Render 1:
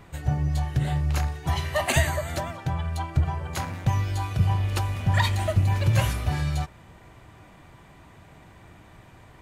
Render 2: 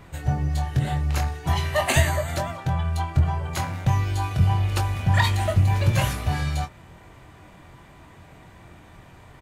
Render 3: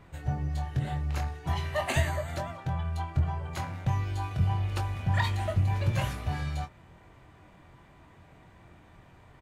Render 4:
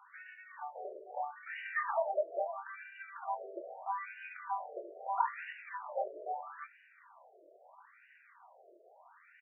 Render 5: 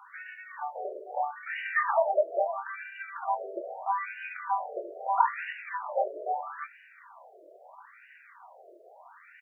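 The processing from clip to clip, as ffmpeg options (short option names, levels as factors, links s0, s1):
-filter_complex "[0:a]asplit=2[s0][s1];[s1]adelay=23,volume=0.447[s2];[s0][s2]amix=inputs=2:normalize=0,volume=1.19"
-af "highshelf=f=5100:g=-7,volume=0.447"
-filter_complex "[0:a]acrossover=split=2600[s0][s1];[s1]acompressor=threshold=0.00224:ratio=6[s2];[s0][s2]amix=inputs=2:normalize=0,afftfilt=real='re*between(b*sr/1024,480*pow(2100/480,0.5+0.5*sin(2*PI*0.77*pts/sr))/1.41,480*pow(2100/480,0.5+0.5*sin(2*PI*0.77*pts/sr))*1.41)':imag='im*between(b*sr/1024,480*pow(2100/480,0.5+0.5*sin(2*PI*0.77*pts/sr))/1.41,480*pow(2100/480,0.5+0.5*sin(2*PI*0.77*pts/sr))*1.41)':win_size=1024:overlap=0.75,volume=1.5"
-af "highpass=260,volume=2.51"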